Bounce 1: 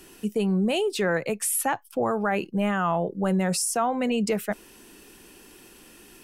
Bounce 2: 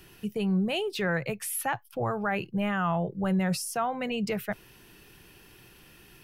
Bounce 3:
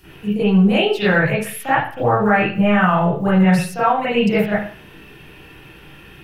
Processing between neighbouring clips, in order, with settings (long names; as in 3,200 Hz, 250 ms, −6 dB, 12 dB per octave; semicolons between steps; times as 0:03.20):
octave-band graphic EQ 125/250/500/1,000/8,000 Hz +11/−10/−4/−3/−12 dB
one scale factor per block 7 bits; convolution reverb RT60 0.45 s, pre-delay 34 ms, DRR −13 dB